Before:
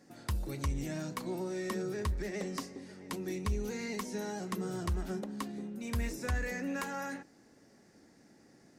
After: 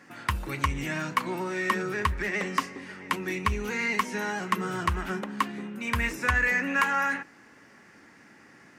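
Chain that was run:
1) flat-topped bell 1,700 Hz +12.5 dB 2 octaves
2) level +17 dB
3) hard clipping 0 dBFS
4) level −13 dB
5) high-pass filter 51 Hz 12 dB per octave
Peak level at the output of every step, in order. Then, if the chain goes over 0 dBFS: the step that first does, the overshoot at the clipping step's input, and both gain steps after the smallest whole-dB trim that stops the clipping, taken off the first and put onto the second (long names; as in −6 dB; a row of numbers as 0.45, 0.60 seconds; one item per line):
−13.0, +4.0, 0.0, −13.0, −12.5 dBFS
step 2, 4.0 dB
step 2 +13 dB, step 4 −9 dB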